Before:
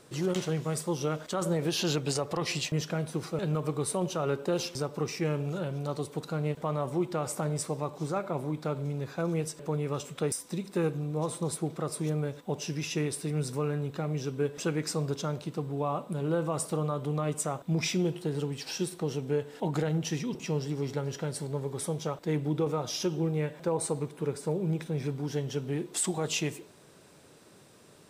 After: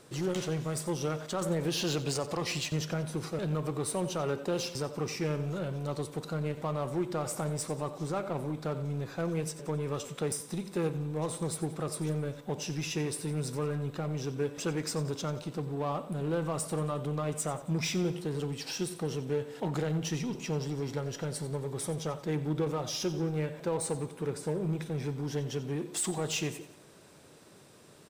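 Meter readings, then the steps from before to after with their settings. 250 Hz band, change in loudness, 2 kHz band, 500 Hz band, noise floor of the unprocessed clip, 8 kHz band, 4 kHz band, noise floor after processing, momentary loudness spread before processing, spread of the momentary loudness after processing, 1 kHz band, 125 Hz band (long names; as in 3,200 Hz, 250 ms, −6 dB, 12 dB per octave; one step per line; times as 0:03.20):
−2.0 dB, −2.0 dB, −1.0 dB, −2.0 dB, −56 dBFS, −1.0 dB, −1.0 dB, −55 dBFS, 4 LU, 4 LU, −2.0 dB, −1.5 dB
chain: in parallel at −9.5 dB: wave folding −33 dBFS
on the sum: repeating echo 90 ms, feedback 47%, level −15 dB
level −2.5 dB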